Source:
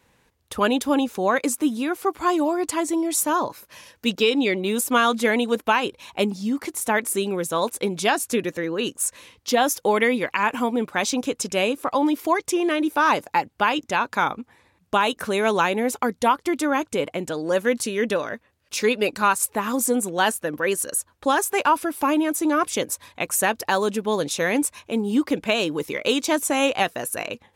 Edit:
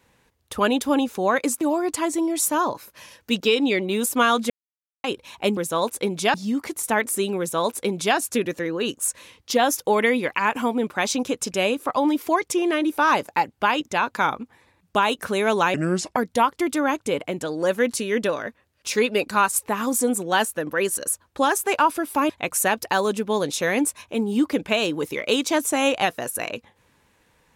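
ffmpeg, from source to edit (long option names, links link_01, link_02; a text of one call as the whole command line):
ffmpeg -i in.wav -filter_complex "[0:a]asplit=9[link_01][link_02][link_03][link_04][link_05][link_06][link_07][link_08][link_09];[link_01]atrim=end=1.612[link_10];[link_02]atrim=start=2.358:end=5.25,asetpts=PTS-STARTPTS,afade=type=out:start_time=2.888:duration=0.004:curve=hsin[link_11];[link_03]atrim=start=5.25:end=5.79,asetpts=PTS-STARTPTS,volume=0[link_12];[link_04]atrim=start=5.79:end=6.322,asetpts=PTS-STARTPTS,afade=type=in:duration=0.004:curve=hsin[link_13];[link_05]atrim=start=7.368:end=8.142[link_14];[link_06]atrim=start=6.318:end=15.724[link_15];[link_07]atrim=start=15.72:end=16.03,asetpts=PTS-STARTPTS,asetrate=32193,aresample=44100,atrim=end_sample=18727,asetpts=PTS-STARTPTS[link_16];[link_08]atrim=start=16.026:end=22.162[link_17];[link_09]atrim=start=23.068[link_18];[link_11][link_12][link_13]concat=n=3:v=0:a=1[link_19];[link_10][link_19]acrossfade=duration=0.004:curve1=hsin:curve2=hsin[link_20];[link_20][link_14]acrossfade=duration=0.004:curve1=hsin:curve2=hsin[link_21];[link_21][link_15]acrossfade=duration=0.004:curve1=hsin:curve2=hsin[link_22];[link_22][link_16]acrossfade=duration=0.004:curve1=hsin:curve2=hsin[link_23];[link_23][link_17]acrossfade=duration=0.004:curve1=hsin:curve2=hsin[link_24];[link_24][link_18]acrossfade=duration=0.004:curve1=hsin:curve2=hsin" out.wav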